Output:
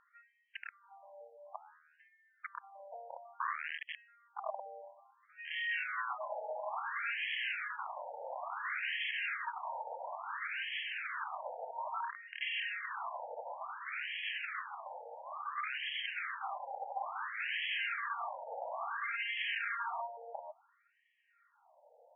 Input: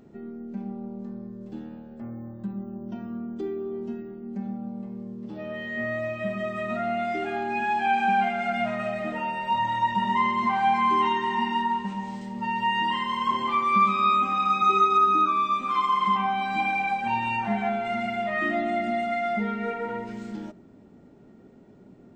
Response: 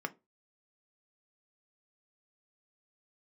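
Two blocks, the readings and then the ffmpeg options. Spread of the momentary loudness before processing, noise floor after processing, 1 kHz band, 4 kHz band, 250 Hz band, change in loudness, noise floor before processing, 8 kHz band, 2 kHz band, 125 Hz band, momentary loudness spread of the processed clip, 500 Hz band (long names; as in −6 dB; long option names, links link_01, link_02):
16 LU, −73 dBFS, −17.5 dB, −5.0 dB, below −40 dB, −13.5 dB, −51 dBFS, can't be measured, −6.5 dB, below −40 dB, 15 LU, −15.5 dB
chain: -af "bandreject=frequency=50:width_type=h:width=6,bandreject=frequency=100:width_type=h:width=6,bandreject=frequency=150:width_type=h:width=6,bandreject=frequency=200:width_type=h:width=6,bandreject=frequency=250:width_type=h:width=6,bandreject=frequency=300:width_type=h:width=6,bandreject=frequency=350:width_type=h:width=6,aeval=exprs='(mod(23.7*val(0)+1,2)-1)/23.7':channel_layout=same,afftfilt=real='re*between(b*sr/1024,650*pow(2400/650,0.5+0.5*sin(2*PI*0.58*pts/sr))/1.41,650*pow(2400/650,0.5+0.5*sin(2*PI*0.58*pts/sr))*1.41)':imag='im*between(b*sr/1024,650*pow(2400/650,0.5+0.5*sin(2*PI*0.58*pts/sr))/1.41,650*pow(2400/650,0.5+0.5*sin(2*PI*0.58*pts/sr))*1.41)':win_size=1024:overlap=0.75,volume=1dB"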